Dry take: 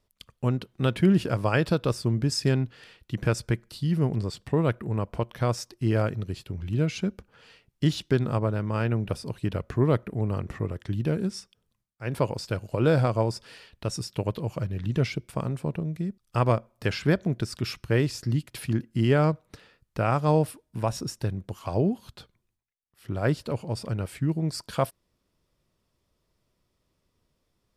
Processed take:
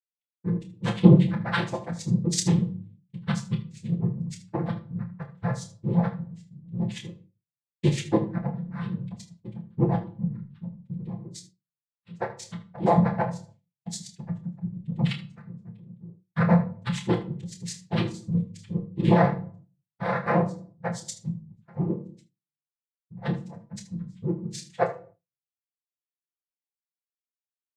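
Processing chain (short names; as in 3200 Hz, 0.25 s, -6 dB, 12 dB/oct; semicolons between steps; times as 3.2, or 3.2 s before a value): per-bin expansion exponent 3; noise vocoder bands 6; comb 5.9 ms, depth 53%; early reflections 28 ms -8.5 dB, 77 ms -15.5 dB; shoebox room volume 470 m³, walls furnished, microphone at 0.83 m; expander -50 dBFS; gain +3.5 dB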